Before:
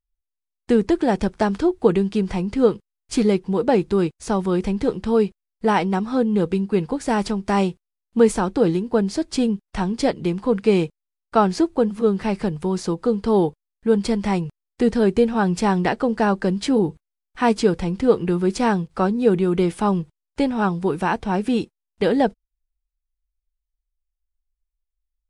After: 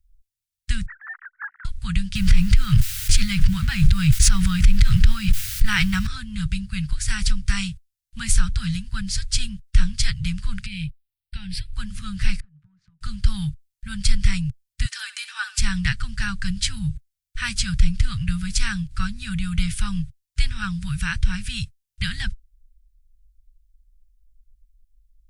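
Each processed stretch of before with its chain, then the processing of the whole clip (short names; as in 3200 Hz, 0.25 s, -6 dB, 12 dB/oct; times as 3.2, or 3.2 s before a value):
0.86–1.65 sine-wave speech + Chebyshev band-pass 750–1900 Hz, order 4
2.15–6.07 G.711 law mismatch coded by mu + tone controls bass -1 dB, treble -5 dB + fast leveller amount 70%
10.66–11.74 compressor 3:1, threshold -22 dBFS + fixed phaser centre 2900 Hz, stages 4
12.4–13.01 ladder band-pass 440 Hz, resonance 20% + compressor, threshold -43 dBFS + three-band expander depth 100%
14.85–15.58 steep high-pass 460 Hz 72 dB/oct + comb 3.4 ms, depth 42% + flutter echo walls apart 11.1 m, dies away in 0.28 s
whole clip: elliptic band-stop 120–1400 Hz, stop band 60 dB; passive tone stack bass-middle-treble 10-0-1; maximiser +33.5 dB; gain -4.5 dB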